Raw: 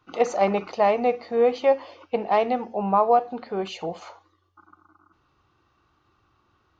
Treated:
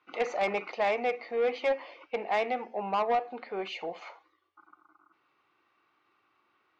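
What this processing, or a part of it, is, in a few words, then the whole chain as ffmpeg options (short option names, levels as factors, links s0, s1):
intercom: -af "highpass=320,lowpass=4500,equalizer=f=2200:t=o:w=0.52:g=10.5,asoftclip=type=tanh:threshold=0.158,volume=0.562"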